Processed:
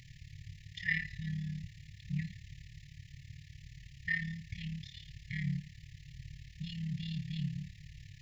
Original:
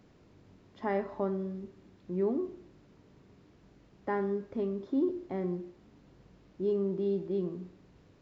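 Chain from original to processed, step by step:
amplitude modulation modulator 36 Hz, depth 70%
linear-phase brick-wall band-stop 160–1,700 Hz
level +16.5 dB

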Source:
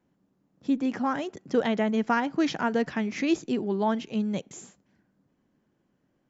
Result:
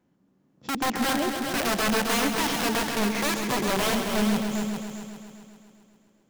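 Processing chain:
wrap-around overflow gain 23 dB
harmonic and percussive parts rebalanced percussive −6 dB
echo machine with several playback heads 133 ms, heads all three, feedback 47%, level −9 dB
level +4.5 dB

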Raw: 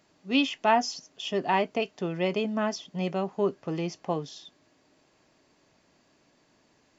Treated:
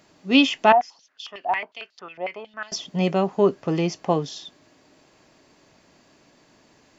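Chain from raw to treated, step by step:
0:00.72–0:02.72: band-pass on a step sequencer 11 Hz 730–4,500 Hz
level +8 dB

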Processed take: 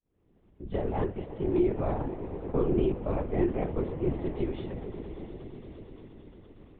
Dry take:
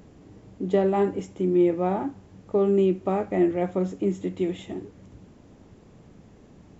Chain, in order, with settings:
fade in at the beginning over 1.23 s
echo that builds up and dies away 116 ms, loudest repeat 5, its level −17 dB
linear-prediction vocoder at 8 kHz whisper
level −5.5 dB

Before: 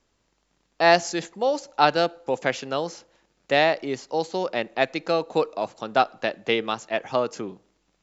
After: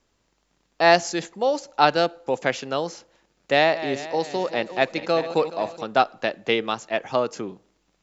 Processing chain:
0:03.52–0:05.85: feedback delay that plays each chunk backwards 212 ms, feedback 59%, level −12.5 dB
level +1 dB

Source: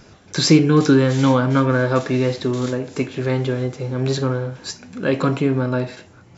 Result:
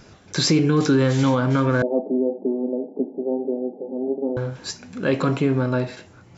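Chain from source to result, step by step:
0:01.82–0:04.37: Chebyshev band-pass filter 190–830 Hz, order 5
boost into a limiter +7.5 dB
level −8.5 dB

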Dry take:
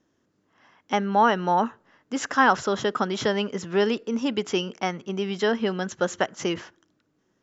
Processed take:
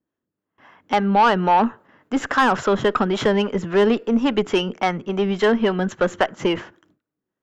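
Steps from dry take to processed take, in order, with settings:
noise gate with hold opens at −52 dBFS
parametric band 5,600 Hz −12.5 dB 1.2 octaves
in parallel at +0.5 dB: brickwall limiter −14.5 dBFS, peak gain reduction 7.5 dB
on the sum: harmonic generator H 8 −27 dB, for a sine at −3.5 dBFS
two-band tremolo in antiphase 3.6 Hz, depth 50%, crossover 440 Hz
soft clipping −11.5 dBFS, distortion −16 dB
level +4 dB

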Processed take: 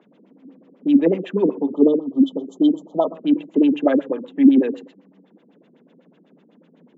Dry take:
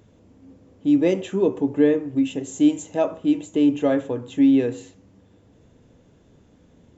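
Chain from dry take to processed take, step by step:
Butterworth high-pass 160 Hz 72 dB per octave
auto-filter low-pass sine 8 Hz 230–3,400 Hz
time-frequency box erased 0:01.63–0:03.15, 1,300–3,000 Hz

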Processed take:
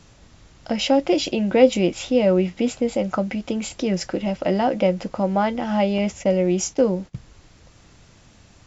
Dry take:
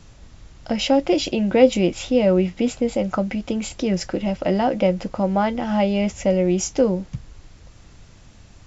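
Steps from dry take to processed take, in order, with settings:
0:05.98–0:07.15: noise gate −32 dBFS, range −18 dB
low-shelf EQ 74 Hz −10.5 dB

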